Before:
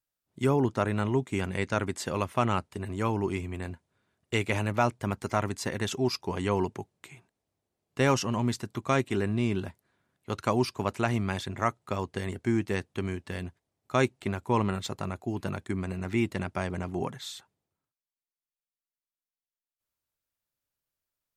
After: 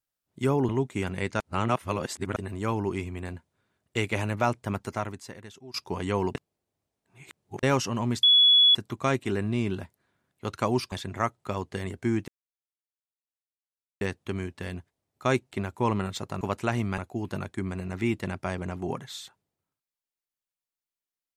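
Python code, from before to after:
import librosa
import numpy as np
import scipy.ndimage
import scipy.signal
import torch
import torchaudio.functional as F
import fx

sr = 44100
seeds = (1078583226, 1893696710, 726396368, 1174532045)

y = fx.edit(x, sr, fx.cut(start_s=0.69, length_s=0.37),
    fx.reverse_span(start_s=1.77, length_s=0.96),
    fx.fade_out_to(start_s=5.18, length_s=0.93, curve='qua', floor_db=-19.5),
    fx.reverse_span(start_s=6.72, length_s=1.28),
    fx.insert_tone(at_s=8.6, length_s=0.52, hz=3390.0, db=-14.5),
    fx.move(start_s=10.77, length_s=0.57, to_s=15.1),
    fx.insert_silence(at_s=12.7, length_s=1.73), tone=tone)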